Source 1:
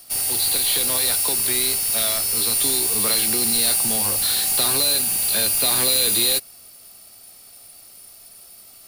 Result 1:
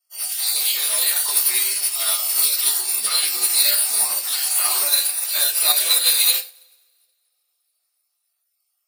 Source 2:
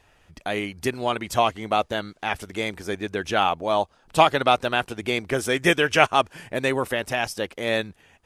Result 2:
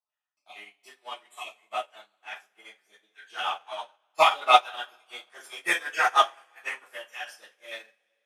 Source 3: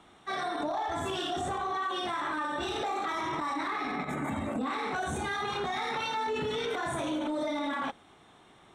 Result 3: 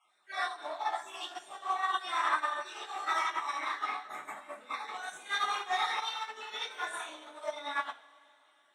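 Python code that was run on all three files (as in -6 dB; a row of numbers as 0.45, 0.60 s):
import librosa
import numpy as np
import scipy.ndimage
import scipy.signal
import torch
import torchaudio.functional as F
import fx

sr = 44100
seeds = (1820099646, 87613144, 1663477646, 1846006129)

p1 = fx.spec_dropout(x, sr, seeds[0], share_pct=34)
p2 = np.clip(p1, -10.0 ** (-23.0 / 20.0), 10.0 ** (-23.0 / 20.0))
p3 = p1 + (p2 * librosa.db_to_amplitude(-8.5))
p4 = scipy.signal.sosfilt(scipy.signal.butter(2, 890.0, 'highpass', fs=sr, output='sos'), p3)
p5 = fx.rev_double_slope(p4, sr, seeds[1], early_s=0.41, late_s=3.7, knee_db=-19, drr_db=-9.5)
p6 = fx.upward_expand(p5, sr, threshold_db=-31.0, expansion=2.5)
y = p6 * librosa.db_to_amplitude(-4.5)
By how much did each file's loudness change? +0.5, -1.5, -2.5 LU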